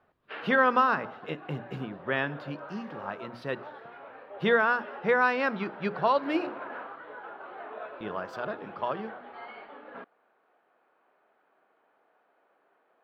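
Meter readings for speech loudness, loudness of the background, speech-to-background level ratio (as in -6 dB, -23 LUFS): -29.0 LUFS, -43.5 LUFS, 14.5 dB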